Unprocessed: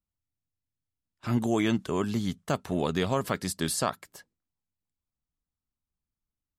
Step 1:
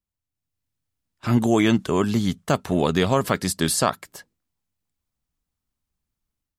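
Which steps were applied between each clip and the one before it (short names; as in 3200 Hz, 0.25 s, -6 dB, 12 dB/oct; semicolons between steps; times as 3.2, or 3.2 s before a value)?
AGC gain up to 7.5 dB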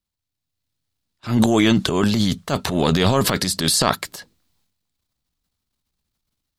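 bell 4100 Hz +7.5 dB 0.75 oct; transient shaper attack -8 dB, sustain +10 dB; gain +2.5 dB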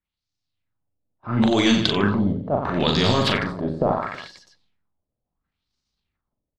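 reverse bouncing-ball echo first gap 40 ms, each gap 1.25×, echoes 5; LFO low-pass sine 0.73 Hz 540–5700 Hz; gain -4.5 dB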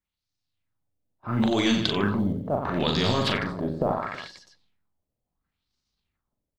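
in parallel at 0 dB: compressor, threshold -26 dBFS, peak gain reduction 11.5 dB; on the sum: short-mantissa float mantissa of 6-bit; gain -7 dB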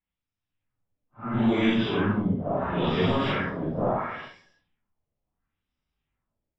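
phase scrambler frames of 0.2 s; polynomial smoothing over 25 samples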